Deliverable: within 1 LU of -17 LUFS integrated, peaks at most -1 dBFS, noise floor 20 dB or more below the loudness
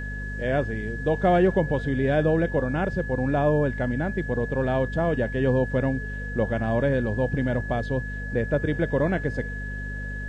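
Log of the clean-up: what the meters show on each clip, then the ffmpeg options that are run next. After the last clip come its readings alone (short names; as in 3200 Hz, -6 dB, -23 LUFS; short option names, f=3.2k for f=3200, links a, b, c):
hum 50 Hz; harmonics up to 250 Hz; hum level -30 dBFS; steady tone 1700 Hz; tone level -35 dBFS; loudness -25.0 LUFS; peak -10.5 dBFS; loudness target -17.0 LUFS
-> -af "bandreject=f=50:t=h:w=6,bandreject=f=100:t=h:w=6,bandreject=f=150:t=h:w=6,bandreject=f=200:t=h:w=6,bandreject=f=250:t=h:w=6"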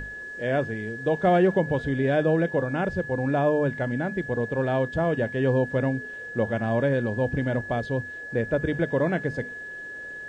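hum none; steady tone 1700 Hz; tone level -35 dBFS
-> -af "bandreject=f=1.7k:w=30"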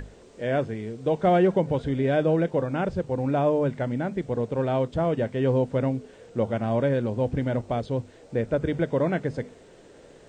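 steady tone none; loudness -26.0 LUFS; peak -11.0 dBFS; loudness target -17.0 LUFS
-> -af "volume=9dB"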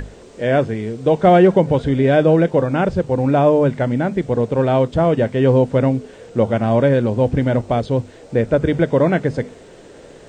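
loudness -17.0 LUFS; peak -2.0 dBFS; noise floor -42 dBFS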